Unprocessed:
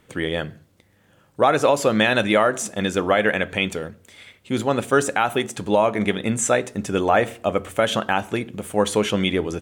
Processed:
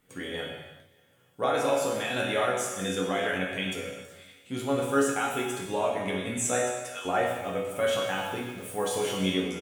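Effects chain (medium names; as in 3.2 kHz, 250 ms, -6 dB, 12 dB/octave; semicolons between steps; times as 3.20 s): 1.73–2.15 s: compression 2.5:1, threshold -19 dBFS, peak gain reduction 4.5 dB; 6.59–7.05 s: high-pass 740 Hz 24 dB/octave; chord resonator F#2 sus4, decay 0.27 s; 8.02–9.20 s: small samples zeroed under -53 dBFS; treble shelf 8.1 kHz +10 dB; feedback delay 295 ms, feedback 45%, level -23.5 dB; gated-style reverb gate 430 ms falling, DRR -0.5 dB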